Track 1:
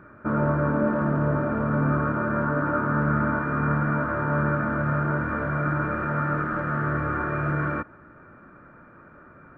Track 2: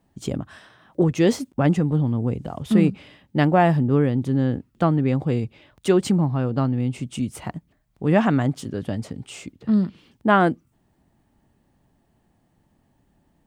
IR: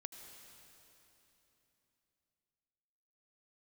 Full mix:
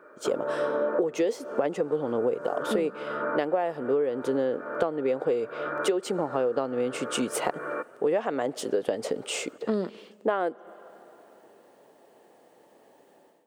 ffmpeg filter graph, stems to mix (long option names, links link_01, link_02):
-filter_complex "[0:a]volume=-5dB[link_01];[1:a]dynaudnorm=framelen=130:gausssize=5:maxgain=13.5dB,volume=-5.5dB,asplit=3[link_02][link_03][link_04];[link_03]volume=-18dB[link_05];[link_04]apad=whole_len=422384[link_06];[link_01][link_06]sidechaincompress=threshold=-25dB:ratio=8:attack=26:release=434[link_07];[2:a]atrim=start_sample=2205[link_08];[link_05][link_08]afir=irnorm=-1:irlink=0[link_09];[link_07][link_02][link_09]amix=inputs=3:normalize=0,highpass=frequency=470:width_type=q:width=3.8,acompressor=threshold=-22dB:ratio=16"